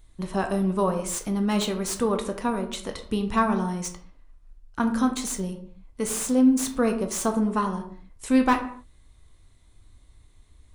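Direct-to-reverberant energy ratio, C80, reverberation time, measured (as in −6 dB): 5.0 dB, 13.0 dB, non-exponential decay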